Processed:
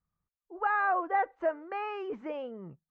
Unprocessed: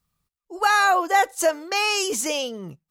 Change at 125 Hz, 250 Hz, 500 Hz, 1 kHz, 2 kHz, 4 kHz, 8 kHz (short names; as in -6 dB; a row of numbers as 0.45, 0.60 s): n/a, -9.0 dB, -9.0 dB, -9.0 dB, -12.0 dB, under -25 dB, under -40 dB